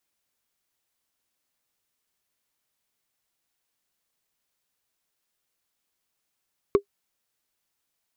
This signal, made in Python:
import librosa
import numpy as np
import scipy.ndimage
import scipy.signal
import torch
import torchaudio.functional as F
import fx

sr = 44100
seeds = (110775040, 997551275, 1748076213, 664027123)

y = fx.strike_wood(sr, length_s=0.45, level_db=-9, body='bar', hz=402.0, decay_s=0.09, tilt_db=9.0, modes=5)